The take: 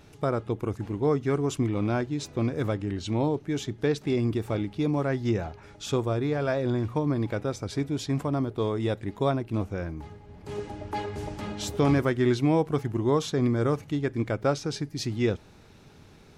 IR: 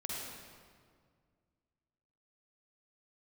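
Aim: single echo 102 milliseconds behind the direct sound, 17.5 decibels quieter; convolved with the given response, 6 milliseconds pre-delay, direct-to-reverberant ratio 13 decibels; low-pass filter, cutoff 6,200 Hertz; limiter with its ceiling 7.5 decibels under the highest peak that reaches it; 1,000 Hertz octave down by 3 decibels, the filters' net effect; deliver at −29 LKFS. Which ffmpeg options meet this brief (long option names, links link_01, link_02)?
-filter_complex "[0:a]lowpass=6200,equalizer=frequency=1000:width_type=o:gain=-4,alimiter=limit=-20dB:level=0:latency=1,aecho=1:1:102:0.133,asplit=2[link_01][link_02];[1:a]atrim=start_sample=2205,adelay=6[link_03];[link_02][link_03]afir=irnorm=-1:irlink=0,volume=-14.5dB[link_04];[link_01][link_04]amix=inputs=2:normalize=0,volume=1dB"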